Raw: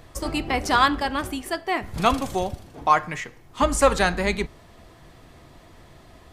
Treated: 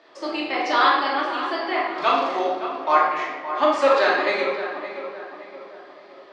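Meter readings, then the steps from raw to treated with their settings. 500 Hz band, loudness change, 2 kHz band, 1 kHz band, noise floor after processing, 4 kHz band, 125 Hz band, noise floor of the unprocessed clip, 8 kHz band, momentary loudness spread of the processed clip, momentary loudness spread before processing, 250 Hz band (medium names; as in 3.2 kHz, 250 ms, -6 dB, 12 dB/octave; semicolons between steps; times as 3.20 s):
+3.5 dB, +2.0 dB, +2.5 dB, +2.5 dB, -46 dBFS, +1.0 dB, under -20 dB, -50 dBFS, under -10 dB, 16 LU, 12 LU, -2.5 dB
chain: Chebyshev band-pass 360–4700 Hz, order 3; on a send: filtered feedback delay 568 ms, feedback 47%, low-pass 2.3 kHz, level -10 dB; on the sum: simulated room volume 680 m³, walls mixed, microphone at 2.6 m; flange 0.92 Hz, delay 10 ms, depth 5 ms, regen -77%; trim +1 dB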